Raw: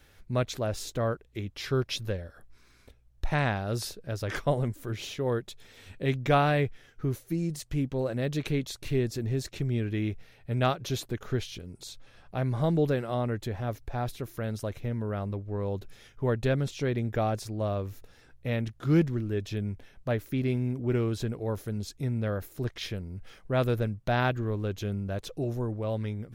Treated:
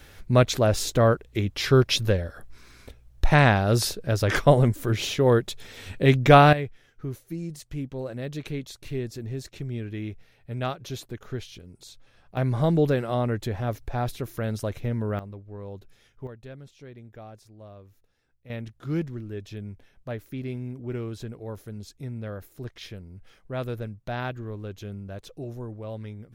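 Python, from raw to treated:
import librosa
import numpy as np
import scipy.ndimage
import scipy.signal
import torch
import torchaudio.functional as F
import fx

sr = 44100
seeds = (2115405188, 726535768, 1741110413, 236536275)

y = fx.gain(x, sr, db=fx.steps((0.0, 9.5), (6.53, -3.5), (12.37, 4.0), (15.19, -7.0), (16.27, -16.0), (18.5, -5.0)))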